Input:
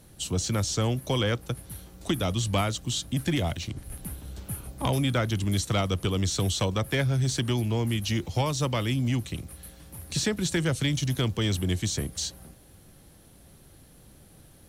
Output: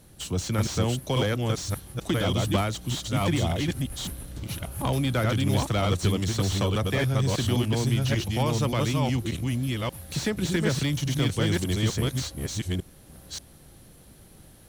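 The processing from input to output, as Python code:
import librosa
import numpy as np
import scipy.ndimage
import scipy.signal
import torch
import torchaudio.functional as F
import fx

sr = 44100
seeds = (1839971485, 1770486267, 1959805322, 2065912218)

y = fx.reverse_delay(x, sr, ms=582, wet_db=-1.5)
y = fx.slew_limit(y, sr, full_power_hz=120.0)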